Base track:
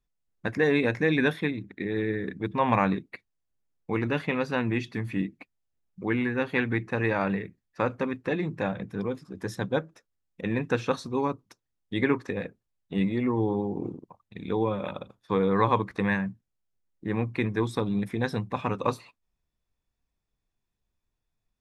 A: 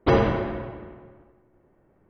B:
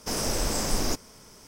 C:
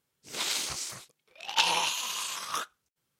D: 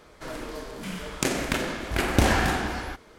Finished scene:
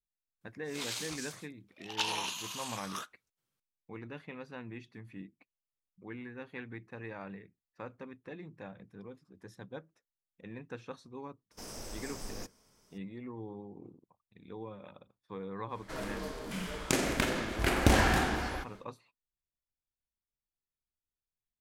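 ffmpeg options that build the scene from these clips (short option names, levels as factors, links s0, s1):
-filter_complex "[0:a]volume=0.133[s0];[3:a]atrim=end=3.19,asetpts=PTS-STARTPTS,volume=0.398,afade=t=in:d=0.004:c=hsin,afade=t=out:st=3.186:d=0.004:c=hsin,adelay=410[s1];[2:a]atrim=end=1.47,asetpts=PTS-STARTPTS,volume=0.15,afade=t=in:d=0.004:c=hsin,afade=t=out:st=1.466:d=0.004:c=hsin,adelay=11510[s2];[4:a]atrim=end=3.18,asetpts=PTS-STARTPTS,volume=0.668,afade=t=in:d=0.1,afade=t=out:st=3.08:d=0.1,adelay=15680[s3];[s0][s1][s2][s3]amix=inputs=4:normalize=0"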